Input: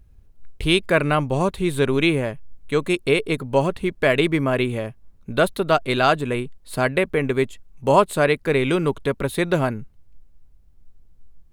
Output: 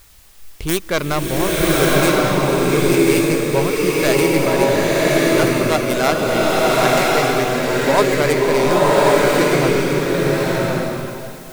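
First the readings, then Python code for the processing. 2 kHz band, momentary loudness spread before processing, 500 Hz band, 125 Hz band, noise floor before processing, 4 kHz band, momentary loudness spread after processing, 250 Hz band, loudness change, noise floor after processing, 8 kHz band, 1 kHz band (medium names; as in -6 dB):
+5.0 dB, 9 LU, +6.0 dB, +4.0 dB, -52 dBFS, +5.5 dB, 6 LU, +6.0 dB, +5.0 dB, -36 dBFS, +14.5 dB, +5.5 dB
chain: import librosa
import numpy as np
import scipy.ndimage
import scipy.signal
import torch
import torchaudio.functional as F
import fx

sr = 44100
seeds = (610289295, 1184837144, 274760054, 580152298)

y = fx.tracing_dist(x, sr, depth_ms=0.47)
y = fx.quant_dither(y, sr, seeds[0], bits=8, dither='triangular')
y = fx.rev_bloom(y, sr, seeds[1], attack_ms=1140, drr_db=-6.5)
y = y * librosa.db_to_amplitude(-1.5)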